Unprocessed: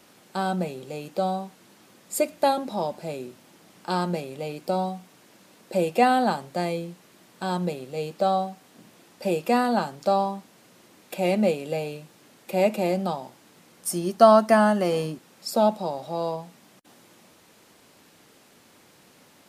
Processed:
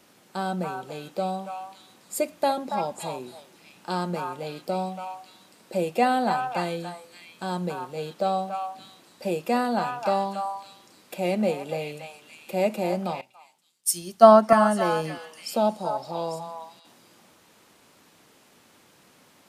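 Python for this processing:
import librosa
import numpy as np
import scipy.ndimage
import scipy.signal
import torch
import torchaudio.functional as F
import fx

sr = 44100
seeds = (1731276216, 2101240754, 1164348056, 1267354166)

y = fx.echo_stepped(x, sr, ms=282, hz=1100.0, octaves=1.4, feedback_pct=70, wet_db=-1.0)
y = fx.band_widen(y, sr, depth_pct=100, at=(13.21, 14.53))
y = y * 10.0 ** (-2.5 / 20.0)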